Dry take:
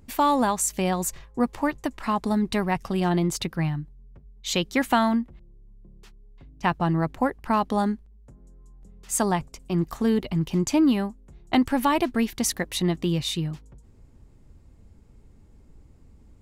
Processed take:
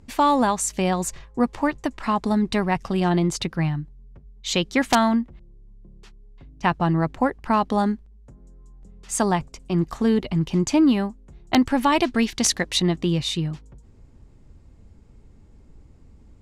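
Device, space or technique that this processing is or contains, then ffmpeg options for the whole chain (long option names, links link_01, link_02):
overflowing digital effects unit: -filter_complex "[0:a]asettb=1/sr,asplit=3[link_01][link_02][link_03];[link_01]atrim=end=11.924[link_04];[link_02]atrim=start=11.92:end=12.8,asetpts=PTS-STARTPTS,afade=type=in:duration=0.004:curve=qsin,afade=type=out:start_time=0.876:duration=0.004:curve=qsin,equalizer=frequency=4700:width_type=o:width=2.2:gain=6[link_05];[link_03]atrim=start=12.796[link_06];[link_04][link_05]acrossfade=duration=0.004:curve1=hsin:curve2=qsin[link_07];[link_07][link_06]acrossfade=duration=0.004:curve1=qsin:curve2=hsin,aeval=exprs='(mod(2.82*val(0)+1,2)-1)/2.82':channel_layout=same,lowpass=8300,volume=2.5dB"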